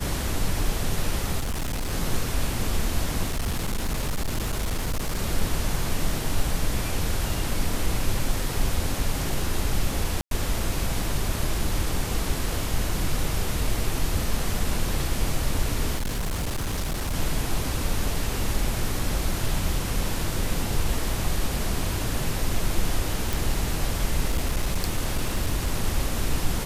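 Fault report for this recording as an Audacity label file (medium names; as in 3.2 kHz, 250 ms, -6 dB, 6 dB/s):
1.390000	1.930000	clipped -24 dBFS
3.240000	5.190000	clipped -22 dBFS
10.210000	10.310000	dropout 102 ms
15.970000	17.140000	clipped -23.5 dBFS
23.330000	23.330000	pop
24.280000	25.720000	clipped -18.5 dBFS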